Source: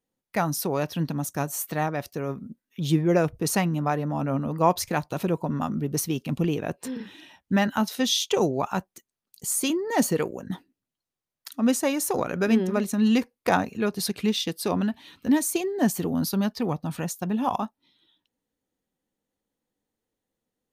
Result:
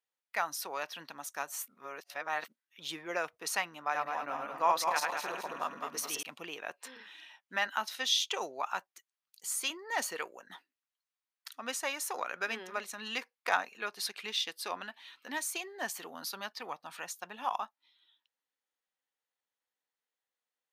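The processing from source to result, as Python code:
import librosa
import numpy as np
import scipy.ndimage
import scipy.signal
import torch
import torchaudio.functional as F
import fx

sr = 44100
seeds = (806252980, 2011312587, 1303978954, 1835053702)

y = fx.reverse_delay_fb(x, sr, ms=106, feedback_pct=61, wet_db=-1.5, at=(3.84, 6.23))
y = fx.edit(y, sr, fx.reverse_span(start_s=1.68, length_s=0.8), tone=tone)
y = scipy.signal.sosfilt(scipy.signal.butter(2, 1200.0, 'highpass', fs=sr, output='sos'), y)
y = fx.high_shelf(y, sr, hz=5300.0, db=-11.5)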